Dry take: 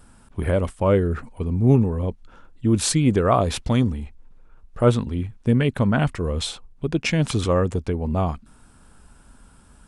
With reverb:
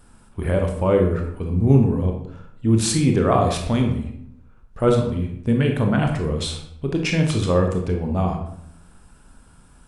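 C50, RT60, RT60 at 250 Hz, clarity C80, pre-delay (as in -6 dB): 5.5 dB, 0.70 s, 0.90 s, 9.0 dB, 21 ms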